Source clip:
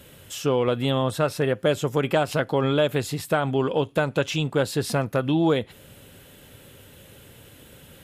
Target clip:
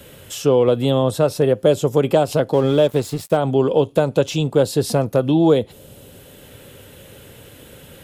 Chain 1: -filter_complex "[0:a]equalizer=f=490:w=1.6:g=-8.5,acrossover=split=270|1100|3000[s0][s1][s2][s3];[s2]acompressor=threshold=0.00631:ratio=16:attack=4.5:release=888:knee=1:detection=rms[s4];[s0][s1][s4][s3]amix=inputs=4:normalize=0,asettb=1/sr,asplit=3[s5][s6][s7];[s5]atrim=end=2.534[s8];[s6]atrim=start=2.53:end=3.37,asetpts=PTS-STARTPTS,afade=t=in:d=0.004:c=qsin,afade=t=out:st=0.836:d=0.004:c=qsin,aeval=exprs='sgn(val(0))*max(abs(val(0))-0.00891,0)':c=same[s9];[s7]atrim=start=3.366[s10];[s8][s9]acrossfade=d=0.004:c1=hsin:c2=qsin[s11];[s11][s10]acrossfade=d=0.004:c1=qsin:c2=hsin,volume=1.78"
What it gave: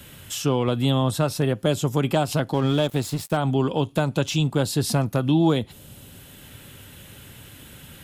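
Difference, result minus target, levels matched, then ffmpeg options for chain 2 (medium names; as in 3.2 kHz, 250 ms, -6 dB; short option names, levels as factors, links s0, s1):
500 Hz band -4.5 dB
-filter_complex "[0:a]equalizer=f=490:w=1.6:g=3.5,acrossover=split=270|1100|3000[s0][s1][s2][s3];[s2]acompressor=threshold=0.00631:ratio=16:attack=4.5:release=888:knee=1:detection=rms[s4];[s0][s1][s4][s3]amix=inputs=4:normalize=0,asettb=1/sr,asplit=3[s5][s6][s7];[s5]atrim=end=2.534[s8];[s6]atrim=start=2.53:end=3.37,asetpts=PTS-STARTPTS,afade=t=in:d=0.004:c=qsin,afade=t=out:st=0.836:d=0.004:c=qsin,aeval=exprs='sgn(val(0))*max(abs(val(0))-0.00891,0)':c=same[s9];[s7]atrim=start=3.366[s10];[s8][s9]acrossfade=d=0.004:c1=hsin:c2=qsin[s11];[s11][s10]acrossfade=d=0.004:c1=qsin:c2=hsin,volume=1.78"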